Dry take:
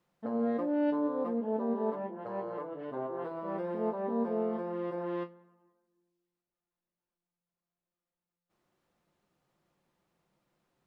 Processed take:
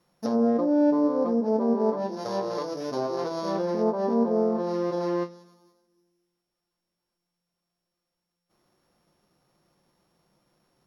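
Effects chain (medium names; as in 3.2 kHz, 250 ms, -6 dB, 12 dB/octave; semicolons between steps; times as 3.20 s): sorted samples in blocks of 8 samples; low-pass that closes with the level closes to 1.2 kHz, closed at -28.5 dBFS; trim +8.5 dB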